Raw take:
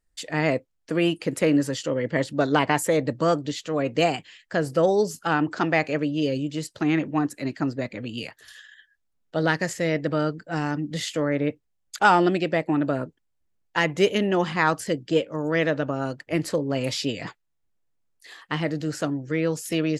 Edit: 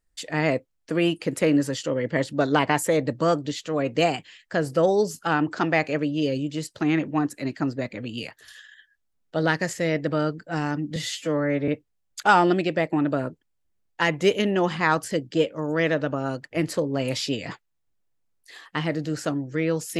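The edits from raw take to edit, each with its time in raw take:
10.96–11.44 s: stretch 1.5×

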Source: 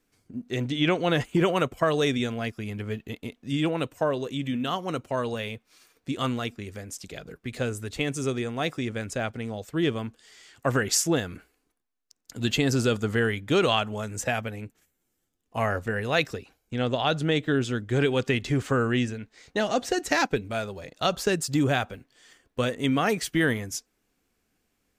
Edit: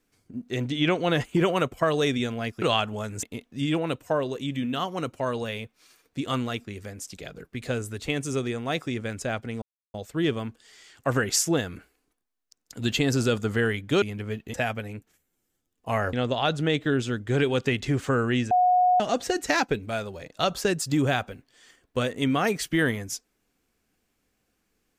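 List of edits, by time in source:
2.62–3.14 s: swap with 13.61–14.22 s
9.53 s: insert silence 0.32 s
15.81–16.75 s: delete
19.13–19.62 s: bleep 727 Hz -16.5 dBFS

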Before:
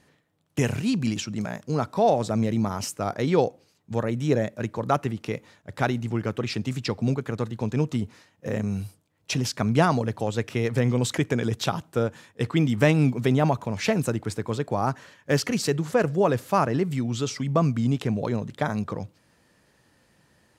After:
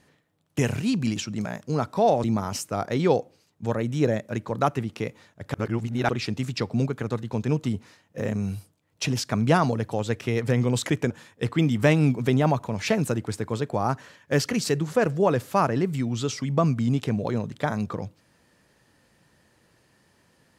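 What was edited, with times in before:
2.24–2.52 s: delete
5.82–6.37 s: reverse
11.38–12.08 s: delete

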